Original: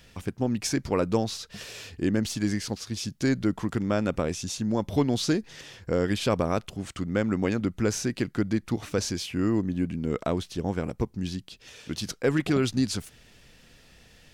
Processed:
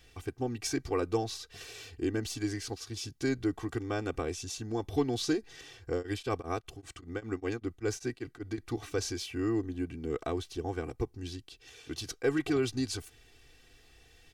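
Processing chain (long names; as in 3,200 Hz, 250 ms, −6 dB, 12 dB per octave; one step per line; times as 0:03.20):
comb filter 2.6 ms, depth 96%
0:05.94–0:08.58: tremolo along a rectified sine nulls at 5.1 Hz
level −8 dB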